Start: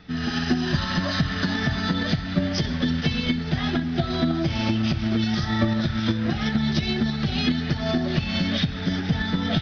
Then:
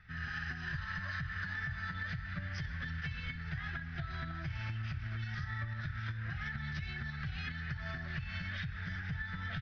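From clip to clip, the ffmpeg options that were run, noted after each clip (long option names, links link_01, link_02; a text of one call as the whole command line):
ffmpeg -i in.wav -af "firequalizer=gain_entry='entry(120,0);entry(240,-25);entry(1600,4);entry(3400,-13)':delay=0.05:min_phase=1,acompressor=threshold=-29dB:ratio=6,volume=-6.5dB" out.wav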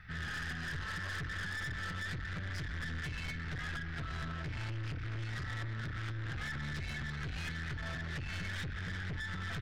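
ffmpeg -i in.wav -af "aeval=exprs='(tanh(158*val(0)+0.35)-tanh(0.35))/158':channel_layout=same,volume=7dB" out.wav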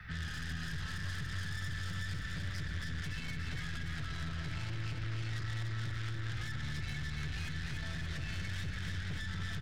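ffmpeg -i in.wav -filter_complex "[0:a]aecho=1:1:288|576|864|1152|1440|1728|2016|2304:0.501|0.291|0.169|0.0978|0.0567|0.0329|0.0191|0.0111,acrossover=split=80|220|2800[link_01][link_02][link_03][link_04];[link_01]acompressor=threshold=-45dB:ratio=4[link_05];[link_02]acompressor=threshold=-46dB:ratio=4[link_06];[link_03]acompressor=threshold=-53dB:ratio=4[link_07];[link_04]acompressor=threshold=-52dB:ratio=4[link_08];[link_05][link_06][link_07][link_08]amix=inputs=4:normalize=0,volume=4.5dB" out.wav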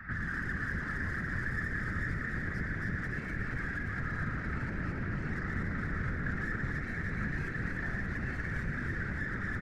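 ffmpeg -i in.wav -filter_complex "[0:a]highshelf=frequency=2300:width_type=q:width=3:gain=-11,afftfilt=real='hypot(re,im)*cos(2*PI*random(0))':imag='hypot(re,im)*sin(2*PI*random(1))':win_size=512:overlap=0.75,asplit=9[link_01][link_02][link_03][link_04][link_05][link_06][link_07][link_08][link_09];[link_02]adelay=113,afreqshift=90,volume=-10.5dB[link_10];[link_03]adelay=226,afreqshift=180,volume=-14.7dB[link_11];[link_04]adelay=339,afreqshift=270,volume=-18.8dB[link_12];[link_05]adelay=452,afreqshift=360,volume=-23dB[link_13];[link_06]adelay=565,afreqshift=450,volume=-27.1dB[link_14];[link_07]adelay=678,afreqshift=540,volume=-31.3dB[link_15];[link_08]adelay=791,afreqshift=630,volume=-35.4dB[link_16];[link_09]adelay=904,afreqshift=720,volume=-39.6dB[link_17];[link_01][link_10][link_11][link_12][link_13][link_14][link_15][link_16][link_17]amix=inputs=9:normalize=0,volume=8dB" out.wav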